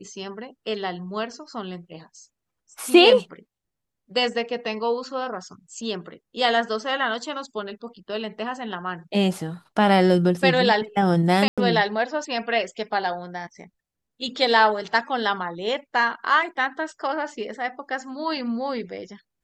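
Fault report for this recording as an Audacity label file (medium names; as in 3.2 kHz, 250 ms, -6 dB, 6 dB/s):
11.480000	11.580000	dropout 96 ms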